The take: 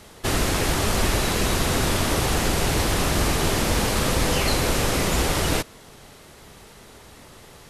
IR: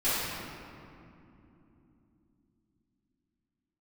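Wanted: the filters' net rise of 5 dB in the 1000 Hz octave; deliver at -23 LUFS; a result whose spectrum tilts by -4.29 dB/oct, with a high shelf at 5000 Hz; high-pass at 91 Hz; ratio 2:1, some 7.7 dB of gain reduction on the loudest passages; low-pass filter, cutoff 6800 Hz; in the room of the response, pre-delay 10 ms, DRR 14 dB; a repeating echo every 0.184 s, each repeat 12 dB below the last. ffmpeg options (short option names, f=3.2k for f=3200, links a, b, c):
-filter_complex "[0:a]highpass=91,lowpass=6.8k,equalizer=f=1k:t=o:g=6.5,highshelf=f=5k:g=-4,acompressor=threshold=-33dB:ratio=2,aecho=1:1:184|368|552:0.251|0.0628|0.0157,asplit=2[a][b];[1:a]atrim=start_sample=2205,adelay=10[c];[b][c]afir=irnorm=-1:irlink=0,volume=-26.5dB[d];[a][d]amix=inputs=2:normalize=0,volume=6.5dB"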